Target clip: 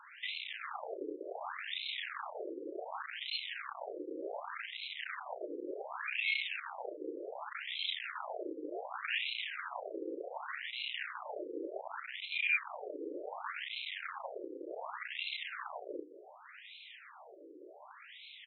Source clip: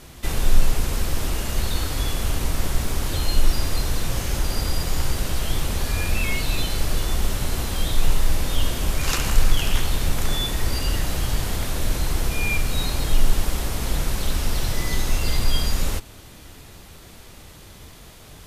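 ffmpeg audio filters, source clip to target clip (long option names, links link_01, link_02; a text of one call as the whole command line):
ffmpeg -i in.wav -filter_complex "[0:a]lowshelf=frequency=83:gain=-7.5,bandreject=frequency=510:width=12,acrossover=split=190[link_01][link_02];[link_01]acontrast=70[link_03];[link_03][link_02]amix=inputs=2:normalize=0,aeval=exprs='0.133*(abs(mod(val(0)/0.133+3,4)-2)-1)':channel_layout=same,aeval=exprs='(tanh(28.2*val(0)+0.65)-tanh(0.65))/28.2':channel_layout=same,asplit=2[link_04][link_05];[link_05]adelay=33,volume=-6.5dB[link_06];[link_04][link_06]amix=inputs=2:normalize=0,afftfilt=real='re*between(b*sr/1024,380*pow(3000/380,0.5+0.5*sin(2*PI*0.67*pts/sr))/1.41,380*pow(3000/380,0.5+0.5*sin(2*PI*0.67*pts/sr))*1.41)':imag='im*between(b*sr/1024,380*pow(3000/380,0.5+0.5*sin(2*PI*0.67*pts/sr))/1.41,380*pow(3000/380,0.5+0.5*sin(2*PI*0.67*pts/sr))*1.41)':win_size=1024:overlap=0.75,volume=4.5dB" out.wav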